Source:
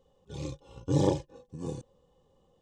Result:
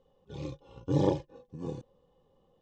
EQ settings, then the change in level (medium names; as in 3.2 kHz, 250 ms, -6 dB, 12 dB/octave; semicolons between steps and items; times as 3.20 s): distance through air 140 m; peaking EQ 64 Hz -4.5 dB 1.7 oct; 0.0 dB